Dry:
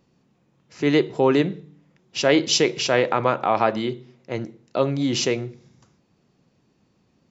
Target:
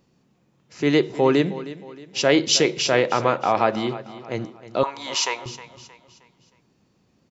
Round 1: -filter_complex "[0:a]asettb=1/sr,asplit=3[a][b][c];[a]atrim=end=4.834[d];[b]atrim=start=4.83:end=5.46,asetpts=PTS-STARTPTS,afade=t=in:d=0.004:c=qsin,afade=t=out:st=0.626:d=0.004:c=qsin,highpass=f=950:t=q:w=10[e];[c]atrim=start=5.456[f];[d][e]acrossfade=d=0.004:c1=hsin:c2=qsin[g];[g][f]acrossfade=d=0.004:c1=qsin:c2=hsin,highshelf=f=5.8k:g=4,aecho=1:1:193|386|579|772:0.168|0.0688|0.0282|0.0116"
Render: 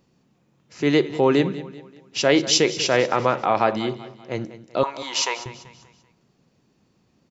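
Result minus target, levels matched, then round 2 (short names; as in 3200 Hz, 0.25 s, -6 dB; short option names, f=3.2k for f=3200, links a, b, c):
echo 0.12 s early
-filter_complex "[0:a]asettb=1/sr,asplit=3[a][b][c];[a]atrim=end=4.834[d];[b]atrim=start=4.83:end=5.46,asetpts=PTS-STARTPTS,afade=t=in:d=0.004:c=qsin,afade=t=out:st=0.626:d=0.004:c=qsin,highpass=f=950:t=q:w=10[e];[c]atrim=start=5.456[f];[d][e]acrossfade=d=0.004:c1=hsin:c2=qsin[g];[g][f]acrossfade=d=0.004:c1=qsin:c2=hsin,highshelf=f=5.8k:g=4,aecho=1:1:313|626|939|1252:0.168|0.0688|0.0282|0.0116"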